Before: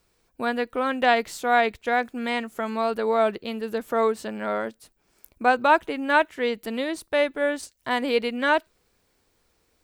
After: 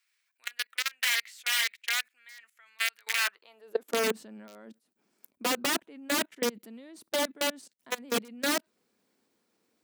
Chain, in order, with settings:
wrap-around overflow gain 15.5 dB
output level in coarse steps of 24 dB
high-pass filter sweep 2,000 Hz → 220 Hz, 0:03.16–0:04.00
level −3.5 dB

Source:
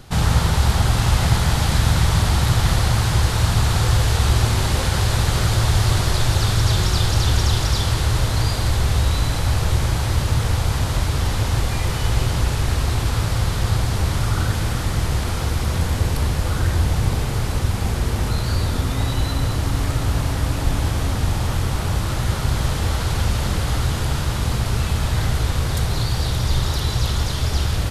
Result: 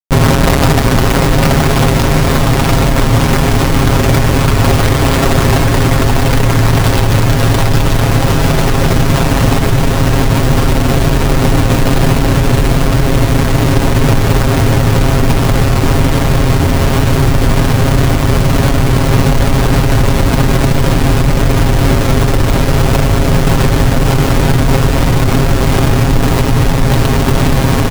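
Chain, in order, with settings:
convolution reverb RT60 0.30 s, pre-delay 150 ms, DRR 3 dB
comparator with hysteresis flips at −21 dBFS
comb filter 7.4 ms, depth 67%
on a send: feedback delay with all-pass diffusion 681 ms, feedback 76%, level −6 dB
on the sum: automatic gain control
boost into a limiter +6.5 dB
level −1 dB

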